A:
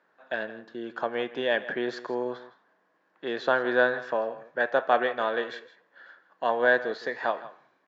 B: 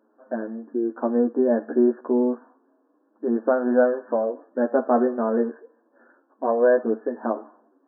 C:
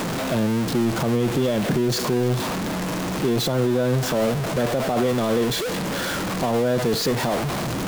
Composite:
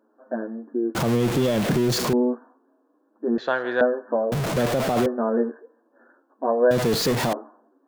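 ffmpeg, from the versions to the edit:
-filter_complex "[2:a]asplit=3[a][b][c];[1:a]asplit=5[d][e][f][g][h];[d]atrim=end=0.952[i];[a]atrim=start=0.948:end=2.132[j];[e]atrim=start=2.128:end=3.382[k];[0:a]atrim=start=3.378:end=3.812[l];[f]atrim=start=3.808:end=4.322[m];[b]atrim=start=4.318:end=5.062[n];[g]atrim=start=5.058:end=6.712[o];[c]atrim=start=6.708:end=7.332[p];[h]atrim=start=7.328[q];[i][j]acrossfade=d=0.004:c1=hsin:c2=hsin[r];[r][k]acrossfade=d=0.004:c1=hsin:c2=hsin[s];[s][l]acrossfade=d=0.004:c1=hsin:c2=hsin[t];[t][m]acrossfade=d=0.004:c1=hsin:c2=hsin[u];[u][n]acrossfade=d=0.004:c1=hsin:c2=hsin[v];[v][o]acrossfade=d=0.004:c1=hsin:c2=hsin[w];[w][p]acrossfade=d=0.004:c1=hsin:c2=hsin[x];[x][q]acrossfade=d=0.004:c1=hsin:c2=hsin"

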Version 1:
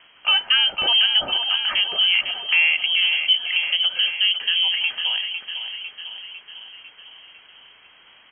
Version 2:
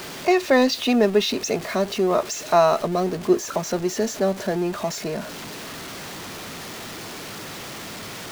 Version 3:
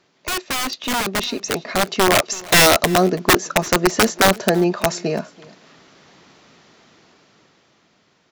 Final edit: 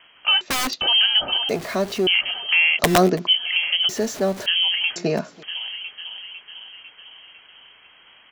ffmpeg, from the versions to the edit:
-filter_complex "[2:a]asplit=3[a][b][c];[1:a]asplit=2[d][e];[0:a]asplit=6[f][g][h][i][j][k];[f]atrim=end=0.412[l];[a]atrim=start=0.408:end=0.812[m];[g]atrim=start=0.808:end=1.492[n];[d]atrim=start=1.488:end=2.072[o];[h]atrim=start=2.068:end=2.792[p];[b]atrim=start=2.788:end=3.272[q];[i]atrim=start=3.268:end=3.892[r];[e]atrim=start=3.888:end=4.462[s];[j]atrim=start=4.458:end=4.962[t];[c]atrim=start=4.958:end=5.432[u];[k]atrim=start=5.428[v];[l][m]acrossfade=d=0.004:c1=hsin:c2=hsin[w];[w][n]acrossfade=d=0.004:c1=hsin:c2=hsin[x];[x][o]acrossfade=d=0.004:c1=hsin:c2=hsin[y];[y][p]acrossfade=d=0.004:c1=hsin:c2=hsin[z];[z][q]acrossfade=d=0.004:c1=hsin:c2=hsin[aa];[aa][r]acrossfade=d=0.004:c1=hsin:c2=hsin[ab];[ab][s]acrossfade=d=0.004:c1=hsin:c2=hsin[ac];[ac][t]acrossfade=d=0.004:c1=hsin:c2=hsin[ad];[ad][u]acrossfade=d=0.004:c1=hsin:c2=hsin[ae];[ae][v]acrossfade=d=0.004:c1=hsin:c2=hsin"

